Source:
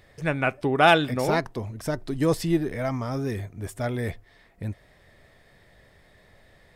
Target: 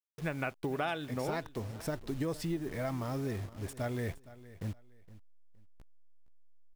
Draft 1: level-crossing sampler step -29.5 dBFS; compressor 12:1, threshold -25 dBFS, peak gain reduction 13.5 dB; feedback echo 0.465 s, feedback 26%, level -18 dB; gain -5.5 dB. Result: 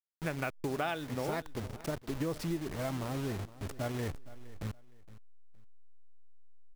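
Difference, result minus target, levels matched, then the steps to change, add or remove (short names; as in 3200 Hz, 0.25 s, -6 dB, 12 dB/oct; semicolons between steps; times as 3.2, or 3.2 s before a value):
level-crossing sampler: distortion +10 dB
change: level-crossing sampler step -40 dBFS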